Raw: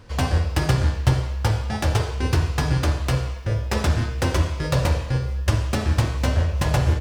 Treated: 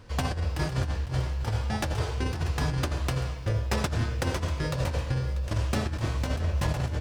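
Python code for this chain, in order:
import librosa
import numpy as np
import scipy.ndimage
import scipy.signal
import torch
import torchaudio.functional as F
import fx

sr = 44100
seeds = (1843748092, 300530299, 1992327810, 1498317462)

y = fx.over_compress(x, sr, threshold_db=-21.0, ratio=-0.5)
y = y + 10.0 ** (-14.5 / 20.0) * np.pad(y, (int(641 * sr / 1000.0), 0))[:len(y)]
y = y * 10.0 ** (-5.0 / 20.0)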